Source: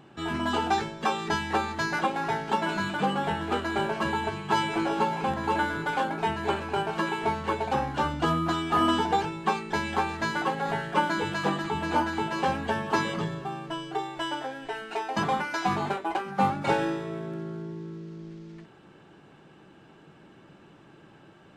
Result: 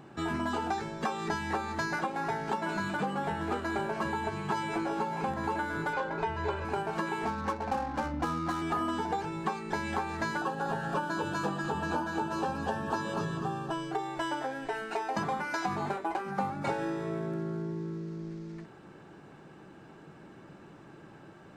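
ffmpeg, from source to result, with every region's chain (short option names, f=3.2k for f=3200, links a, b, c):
-filter_complex "[0:a]asettb=1/sr,asplit=3[a][b][c];[a]atrim=end=5.934[d];[b]atrim=start=5.93:end=6.65,asetpts=PTS-STARTPTS,afade=t=in:d=0.004:c=qsin,afade=t=out:st=0.716:d=0.004:c=qsin,lowpass=5.1k,asubboost=boost=6.5:cutoff=110,aecho=1:1:2:0.57,atrim=end_sample=31752[e];[c]atrim=start=6.646[f];[d][e]acrossfade=d=0.004:c1=hsin:c2=qsin[g];[g][f]acrossfade=d=0.004:c1=qsin:c2=hsin,asettb=1/sr,asplit=3[h][i][j];[h]atrim=end=7.254[k];[i]atrim=start=7.25:end=8.62,asetpts=PTS-STARTPTS,afade=t=in:d=0.004:c=qsin,afade=t=out:st=1.366:d=0.004:c=qsin,equalizer=f=400:w=1.5:g=-4,aecho=1:1:3.8:0.6,atrim=end_sample=60417,adynamicsmooth=sensitivity=5:basefreq=550[l];[j]atrim=start=8.616[m];[k][l]acrossfade=d=0.004:c1=hsin:c2=qsin[n];[n][m]acrossfade=d=0.004:c1=qsin:c2=hsin,asettb=1/sr,asplit=3[o][p][q];[o]atrim=end=10.374[r];[p]atrim=start=10.37:end=13.72,asetpts=PTS-STARTPTS,afade=t=in:d=0.004:c=qsin,afade=t=out:st=3.346:d=0.004:c=qsin,asuperstop=centerf=2100:order=4:qfactor=3.6,aecho=1:1:236:0.398,atrim=end_sample=147735[s];[q]atrim=start=13.716[t];[r][s]acrossfade=d=0.004:c1=hsin:c2=qsin[u];[u][t]acrossfade=d=0.004:c1=qsin:c2=hsin,equalizer=f=3.1k:w=2.2:g=-7,acompressor=threshold=-31dB:ratio=6,volume=2dB"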